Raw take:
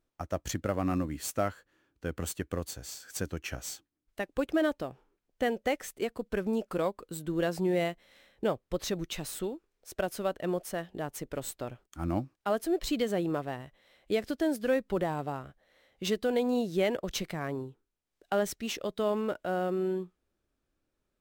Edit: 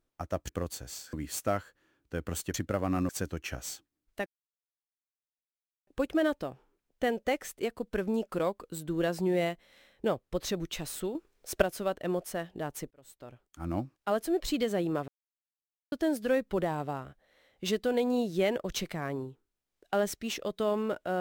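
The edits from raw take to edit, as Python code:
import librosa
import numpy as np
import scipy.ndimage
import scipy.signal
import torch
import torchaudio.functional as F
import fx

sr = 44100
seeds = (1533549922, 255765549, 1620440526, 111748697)

y = fx.edit(x, sr, fx.swap(start_s=0.49, length_s=0.55, other_s=2.45, other_length_s=0.64),
    fx.insert_silence(at_s=4.26, length_s=1.61),
    fx.clip_gain(start_s=9.54, length_s=0.48, db=8.0),
    fx.fade_in_span(start_s=11.3, length_s=1.06),
    fx.silence(start_s=13.47, length_s=0.84), tone=tone)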